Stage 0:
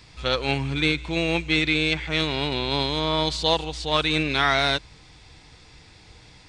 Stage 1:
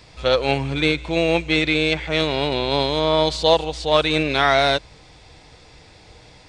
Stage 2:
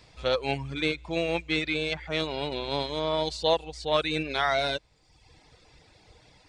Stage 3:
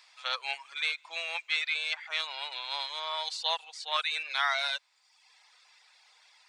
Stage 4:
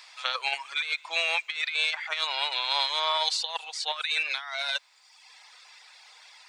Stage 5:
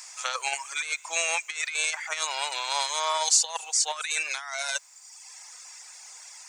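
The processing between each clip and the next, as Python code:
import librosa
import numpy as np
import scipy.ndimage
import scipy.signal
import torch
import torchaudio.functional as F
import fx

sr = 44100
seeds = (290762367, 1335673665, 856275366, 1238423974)

y1 = fx.peak_eq(x, sr, hz=580.0, db=8.5, octaves=0.95)
y1 = y1 * 10.0 ** (1.5 / 20.0)
y2 = fx.dereverb_blind(y1, sr, rt60_s=0.89)
y2 = y2 * 10.0 ** (-7.5 / 20.0)
y3 = scipy.signal.sosfilt(scipy.signal.butter(4, 960.0, 'highpass', fs=sr, output='sos'), y2)
y4 = fx.over_compress(y3, sr, threshold_db=-34.0, ratio=-0.5)
y4 = y4 * 10.0 ** (6.5 / 20.0)
y5 = fx.high_shelf_res(y4, sr, hz=5100.0, db=10.5, q=3.0)
y5 = y5 * 10.0 ** (1.5 / 20.0)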